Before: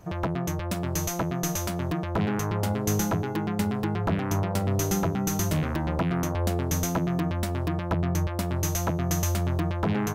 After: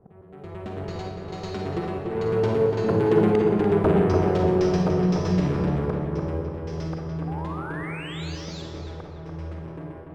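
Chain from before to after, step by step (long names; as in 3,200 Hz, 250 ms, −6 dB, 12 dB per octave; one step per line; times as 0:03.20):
source passing by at 0:03.37, 27 m/s, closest 16 metres
low-pass that shuts in the quiet parts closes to 940 Hz, open at −34 dBFS
parametric band 420 Hz +12 dB 0.56 octaves
volume swells 378 ms
in parallel at −2.5 dB: speech leveller within 4 dB
on the sum: sound drawn into the spectrogram rise, 0:07.27–0:08.62, 740–7,800 Hz −39 dBFS
sample-rate reduction 11,000 Hz, jitter 0%
high-frequency loss of the air 140 metres
on a send: feedback echo with a low-pass in the loop 291 ms, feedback 53%, low-pass 2,400 Hz, level −4 dB
on the sum: four-comb reverb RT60 0.92 s, DRR 2 dB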